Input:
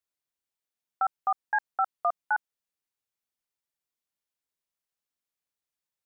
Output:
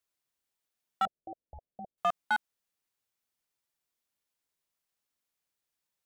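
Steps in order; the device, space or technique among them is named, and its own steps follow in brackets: limiter into clipper (limiter -21 dBFS, peak gain reduction 3.5 dB; hard clip -25.5 dBFS, distortion -15 dB); 1.05–1.98 steep low-pass 670 Hz 72 dB/oct; gain +3.5 dB

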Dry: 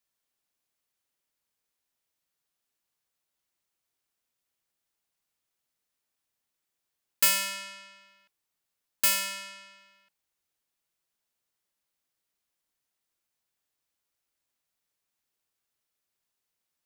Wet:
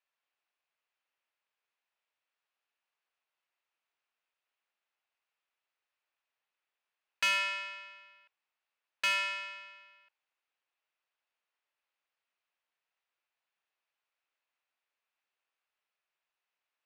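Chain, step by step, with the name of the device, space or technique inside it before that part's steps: megaphone (BPF 640–2700 Hz; bell 2600 Hz +5 dB 0.23 oct; hard clip -25 dBFS, distortion -15 dB); gain +2 dB

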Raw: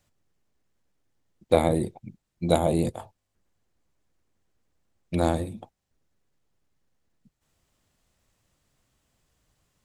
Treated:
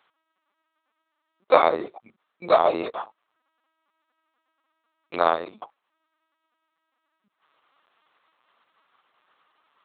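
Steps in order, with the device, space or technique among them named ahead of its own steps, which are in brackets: talking toy (LPC vocoder at 8 kHz pitch kept; HPF 620 Hz 12 dB/oct; bell 1200 Hz +11 dB 0.57 oct); gain +7.5 dB

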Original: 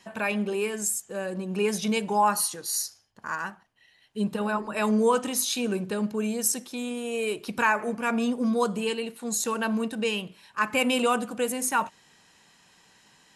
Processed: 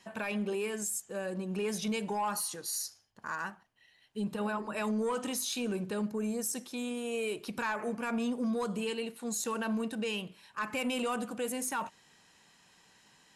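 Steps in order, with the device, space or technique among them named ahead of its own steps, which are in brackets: 6.08–6.55 bell 3100 Hz -9 dB 0.93 oct; soft clipper into limiter (soft clip -16.5 dBFS, distortion -19 dB; limiter -22.5 dBFS, peak gain reduction 5.5 dB); gain -4 dB

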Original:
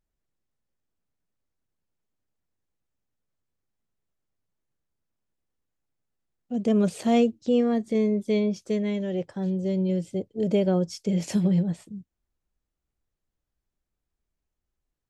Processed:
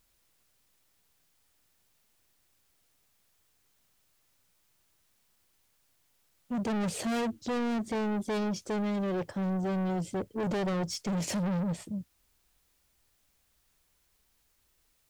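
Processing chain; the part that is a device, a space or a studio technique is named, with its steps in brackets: open-reel tape (soft clip -33.5 dBFS, distortion -5 dB; bell 84 Hz +4 dB; white noise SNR 37 dB); gain +4.5 dB

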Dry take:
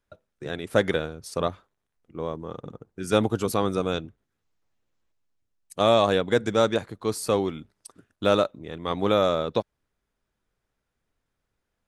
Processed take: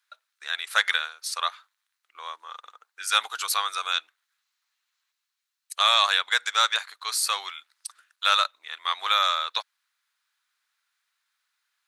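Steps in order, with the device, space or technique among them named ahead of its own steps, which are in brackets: headphones lying on a table (HPF 1200 Hz 24 dB/oct; bell 4100 Hz +6 dB 0.32 oct); gain +8 dB

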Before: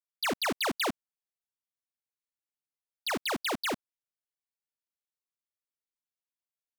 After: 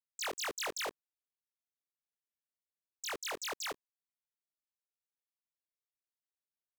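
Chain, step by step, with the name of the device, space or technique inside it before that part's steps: chipmunk voice (pitch shift +9 st); gain -7.5 dB

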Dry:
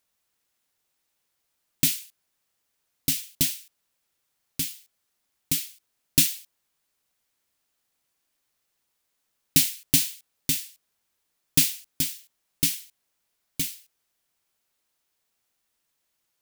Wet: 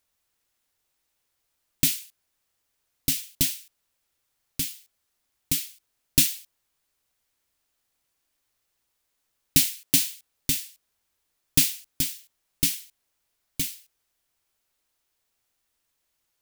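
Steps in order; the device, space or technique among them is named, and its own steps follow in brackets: low shelf boost with a cut just above (low shelf 100 Hz +7.5 dB; bell 180 Hz -4.5 dB 0.61 oct); 9.6–10.12 HPF 170 Hz

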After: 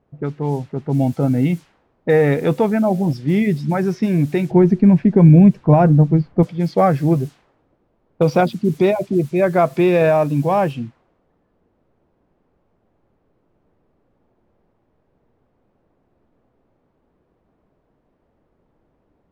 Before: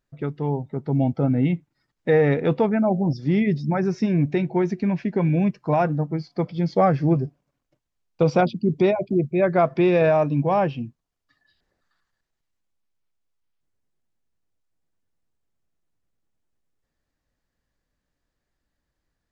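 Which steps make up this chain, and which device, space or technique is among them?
cassette deck with a dynamic noise filter (white noise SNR 28 dB; low-pass opened by the level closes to 430 Hz, open at -18 dBFS); 4.51–6.43 tilt -3.5 dB/oct; gain +3.5 dB

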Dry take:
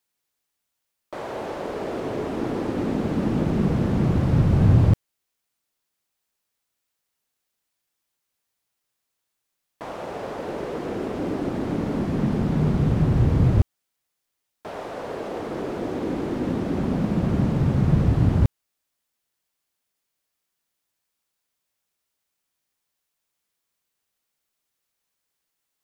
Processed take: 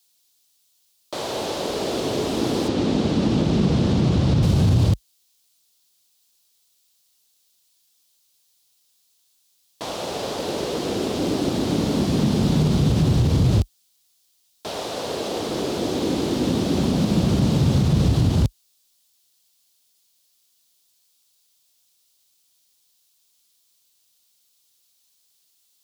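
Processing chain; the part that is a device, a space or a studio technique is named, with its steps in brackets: HPF 45 Hz 24 dB/oct; over-bright horn tweeter (resonant high shelf 2700 Hz +11.5 dB, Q 1.5; limiter -14 dBFS, peak gain reduction 9 dB); 2.68–4.43 air absorption 75 m; gain +4 dB

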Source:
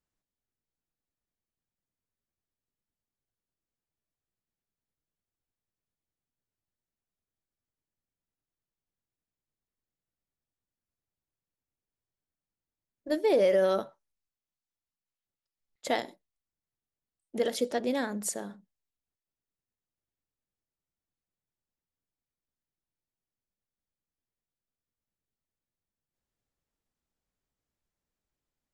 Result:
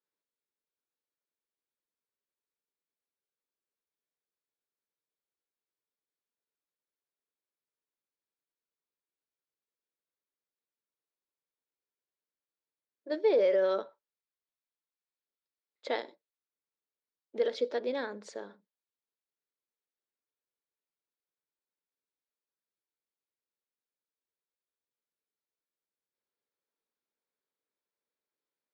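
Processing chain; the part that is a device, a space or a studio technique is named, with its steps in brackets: phone earpiece (speaker cabinet 430–4200 Hz, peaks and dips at 440 Hz +4 dB, 730 Hz -8 dB, 1200 Hz -3 dB, 1900 Hz -4 dB, 2900 Hz -8 dB)

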